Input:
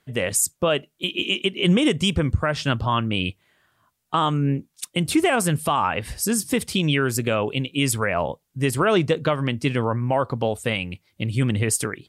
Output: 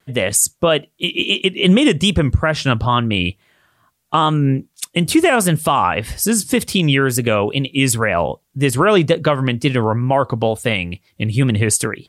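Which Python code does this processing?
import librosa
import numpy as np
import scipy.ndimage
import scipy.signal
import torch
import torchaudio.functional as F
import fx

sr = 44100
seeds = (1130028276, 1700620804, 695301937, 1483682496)

y = fx.wow_flutter(x, sr, seeds[0], rate_hz=2.1, depth_cents=61.0)
y = y * librosa.db_to_amplitude(6.0)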